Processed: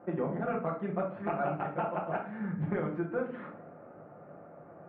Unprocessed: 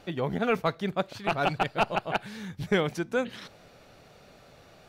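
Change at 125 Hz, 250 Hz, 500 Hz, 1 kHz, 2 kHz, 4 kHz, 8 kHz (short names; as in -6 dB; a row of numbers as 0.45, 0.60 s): -2.5 dB, -2.5 dB, -4.5 dB, -5.5 dB, -10.5 dB, under -25 dB, under -30 dB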